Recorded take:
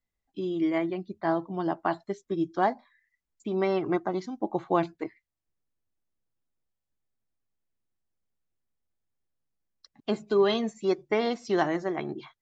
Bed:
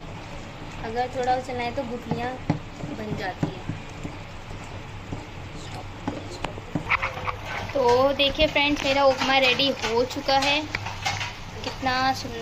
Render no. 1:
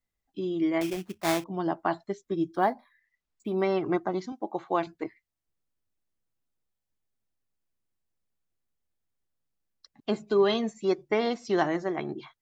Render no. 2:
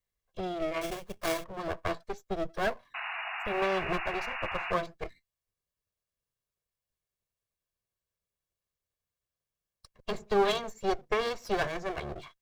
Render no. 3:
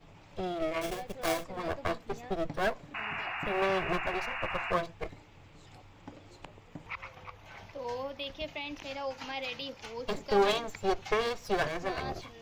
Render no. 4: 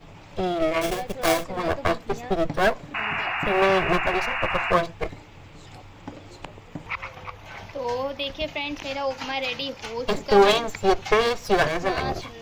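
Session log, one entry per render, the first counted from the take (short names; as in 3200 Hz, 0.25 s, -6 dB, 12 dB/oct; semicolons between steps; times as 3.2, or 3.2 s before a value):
0.81–1.44 sample-rate reducer 2900 Hz, jitter 20%; 2.54–3.62 decimation joined by straight lines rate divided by 3×; 4.32–4.87 HPF 450 Hz 6 dB/oct
minimum comb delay 1.8 ms; 2.94–4.72 painted sound noise 640–2900 Hz -37 dBFS
add bed -18 dB
gain +9.5 dB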